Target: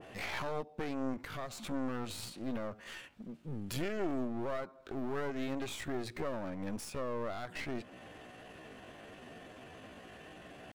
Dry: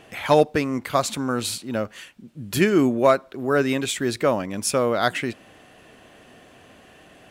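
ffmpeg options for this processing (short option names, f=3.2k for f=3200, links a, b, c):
-af "acompressor=threshold=-27dB:ratio=5,alimiter=limit=-22.5dB:level=0:latency=1:release=71,atempo=0.68,highshelf=f=4.6k:g=-7,aeval=exprs='clip(val(0),-1,0.00631)':c=same,adynamicequalizer=threshold=0.00251:dfrequency=1800:dqfactor=0.7:tfrequency=1800:tqfactor=0.7:attack=5:release=100:ratio=0.375:range=2:mode=cutabove:tftype=highshelf,volume=-1dB"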